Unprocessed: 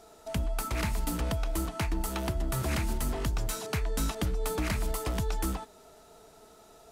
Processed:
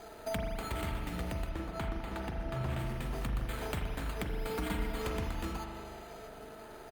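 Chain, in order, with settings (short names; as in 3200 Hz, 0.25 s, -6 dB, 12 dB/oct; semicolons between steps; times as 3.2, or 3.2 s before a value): compressor 16:1, threshold -38 dBFS, peak gain reduction 13.5 dB; steep low-pass 12000 Hz 72 dB/oct; careless resampling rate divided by 8×, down none, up hold; notch 1100 Hz, Q 22; 1.49–2.79 high shelf 5300 Hz -10.5 dB; 4.29–5.02 comb 4.3 ms, depth 76%; feedback echo 0.264 s, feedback 34%, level -22 dB; spring tank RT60 2.2 s, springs 39 ms, chirp 40 ms, DRR 0.5 dB; gain +4.5 dB; Opus 48 kbps 48000 Hz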